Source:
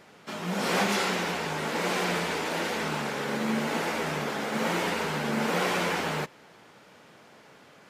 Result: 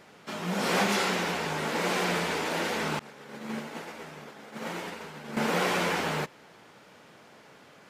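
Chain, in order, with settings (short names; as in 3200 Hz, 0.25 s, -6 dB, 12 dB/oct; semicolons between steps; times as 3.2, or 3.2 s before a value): 2.99–5.37 expander -20 dBFS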